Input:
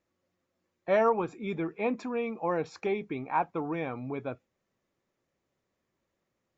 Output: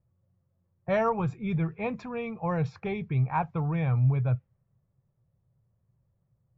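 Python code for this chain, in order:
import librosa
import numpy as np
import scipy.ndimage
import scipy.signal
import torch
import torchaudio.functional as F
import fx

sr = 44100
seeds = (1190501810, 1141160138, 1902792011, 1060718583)

y = fx.env_lowpass(x, sr, base_hz=900.0, full_db=-24.0)
y = fx.low_shelf_res(y, sr, hz=190.0, db=14.0, q=3.0)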